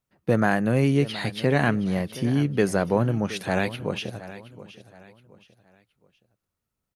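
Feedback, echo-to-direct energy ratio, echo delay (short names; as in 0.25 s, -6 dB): 34%, -15.5 dB, 0.721 s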